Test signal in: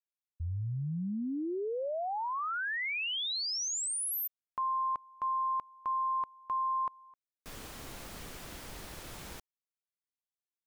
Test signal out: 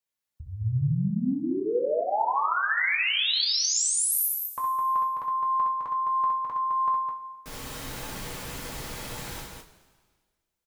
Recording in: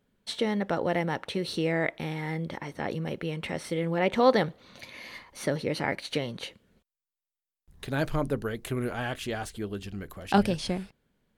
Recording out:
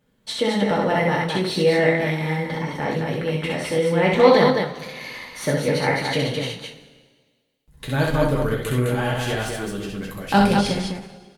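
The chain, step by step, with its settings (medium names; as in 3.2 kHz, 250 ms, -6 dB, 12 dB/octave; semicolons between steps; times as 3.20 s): loudspeakers at several distances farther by 22 m -3 dB, 72 m -4 dB; two-slope reverb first 0.22 s, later 1.6 s, from -18 dB, DRR -0.5 dB; endings held to a fixed fall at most 150 dB/s; trim +3 dB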